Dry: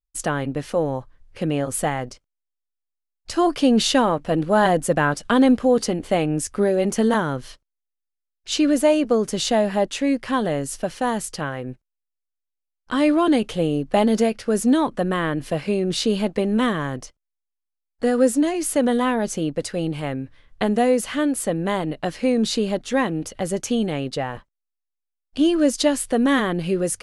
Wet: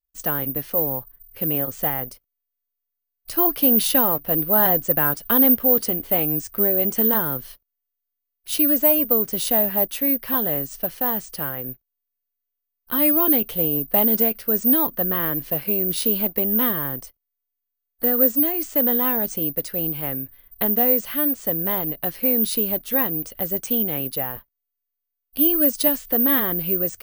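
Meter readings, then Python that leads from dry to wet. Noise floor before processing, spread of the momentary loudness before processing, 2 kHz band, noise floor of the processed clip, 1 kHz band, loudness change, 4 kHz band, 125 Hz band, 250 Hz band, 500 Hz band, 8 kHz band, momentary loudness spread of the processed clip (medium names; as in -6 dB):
-82 dBFS, 10 LU, -5.0 dB, -82 dBFS, -5.0 dB, +2.5 dB, -5.0 dB, -5.0 dB, -5.0 dB, -5.0 dB, -4.0 dB, 10 LU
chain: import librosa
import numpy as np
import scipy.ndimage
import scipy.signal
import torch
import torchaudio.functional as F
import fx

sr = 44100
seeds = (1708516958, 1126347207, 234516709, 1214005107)

y = (np.kron(scipy.signal.resample_poly(x, 1, 3), np.eye(3)[0]) * 3)[:len(x)]
y = F.gain(torch.from_numpy(y), -5.0).numpy()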